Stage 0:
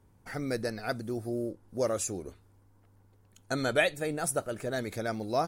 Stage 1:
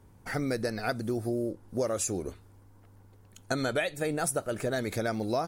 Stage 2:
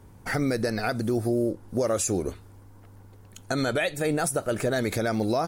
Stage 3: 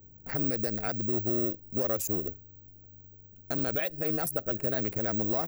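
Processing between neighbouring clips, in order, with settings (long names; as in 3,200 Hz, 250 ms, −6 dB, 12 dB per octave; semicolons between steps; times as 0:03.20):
downward compressor 6 to 1, threshold −32 dBFS, peak gain reduction 12 dB; level +6 dB
brickwall limiter −22.5 dBFS, peak gain reduction 7 dB; level +6.5 dB
adaptive Wiener filter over 41 samples; bad sample-rate conversion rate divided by 2×, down none, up zero stuff; level −6 dB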